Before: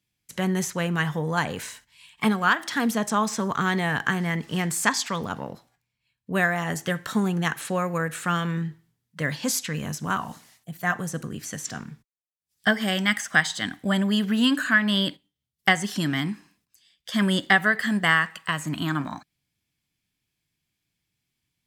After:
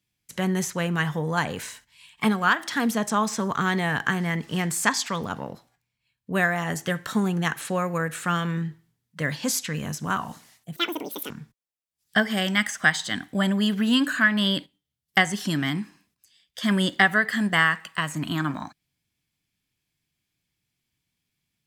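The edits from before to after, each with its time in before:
10.76–11.81 speed 193%

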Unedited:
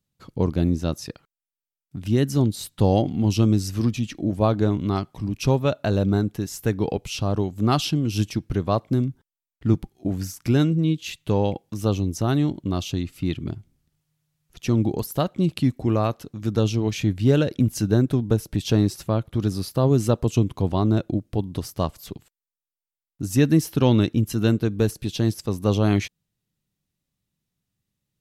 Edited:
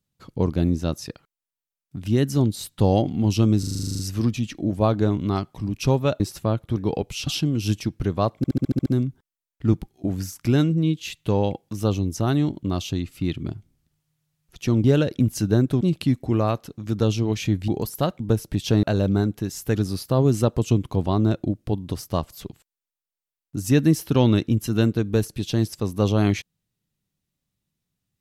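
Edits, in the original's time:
3.59 stutter 0.04 s, 11 plays
5.8–6.72 swap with 18.84–19.41
7.22–7.77 cut
8.87 stutter 0.07 s, 8 plays
14.85–15.37 swap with 17.24–18.21

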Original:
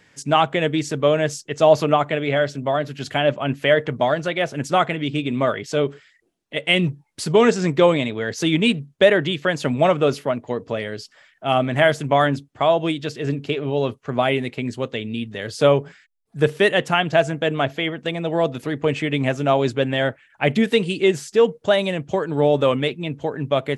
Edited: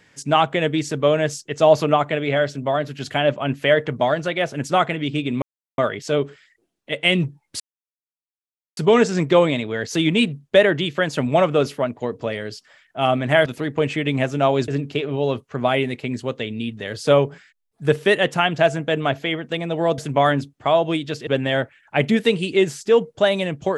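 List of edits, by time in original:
5.42 insert silence 0.36 s
7.24 insert silence 1.17 s
11.93–13.22 swap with 18.52–19.74

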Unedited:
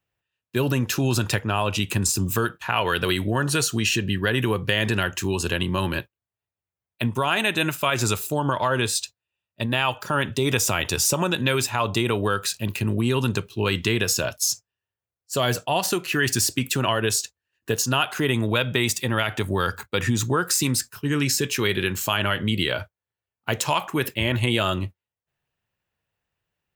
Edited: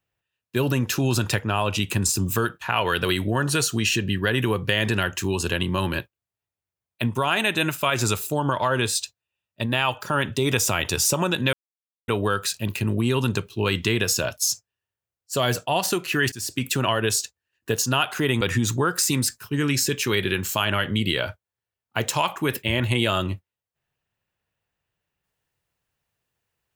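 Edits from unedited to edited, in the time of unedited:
11.53–12.08 mute
16.32–16.67 fade in, from -22.5 dB
18.41–19.93 cut

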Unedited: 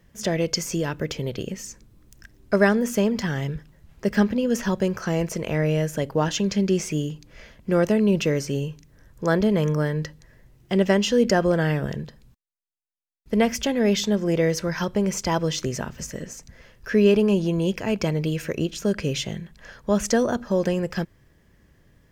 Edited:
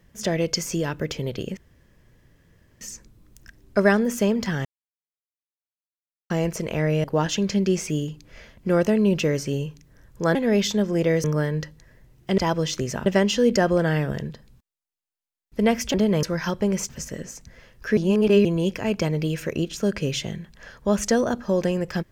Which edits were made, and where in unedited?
1.57 insert room tone 1.24 s
3.41–5.06 mute
5.8–6.06 cut
9.37–9.66 swap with 13.68–14.57
15.23–15.91 move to 10.8
16.99–17.47 reverse

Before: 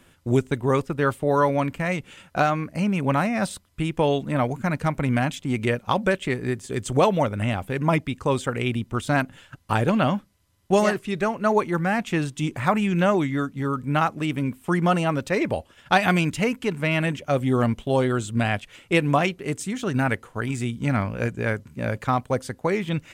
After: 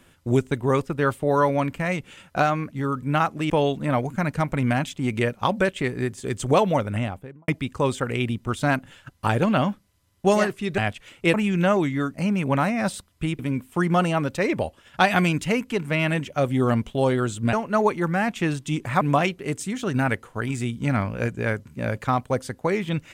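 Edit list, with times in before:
2.71–3.96 swap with 13.52–14.31
7.33–7.94 studio fade out
11.24–12.72 swap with 18.45–19.01

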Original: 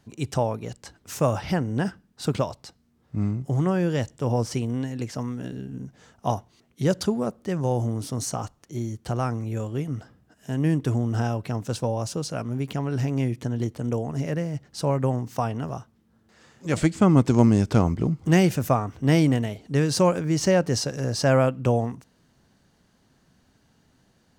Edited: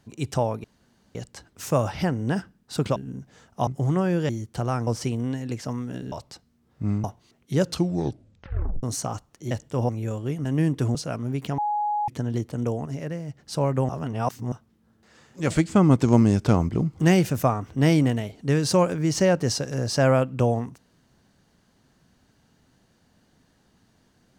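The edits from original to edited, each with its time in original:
0.64 insert room tone 0.51 s
2.45–3.37 swap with 5.62–6.33
3.99–4.37 swap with 8.8–9.38
6.91 tape stop 1.21 s
9.94–10.51 cut
11.01–12.21 cut
12.84–13.34 bleep 835 Hz -22 dBFS
14.12–14.64 gain -4.5 dB
15.15–15.78 reverse

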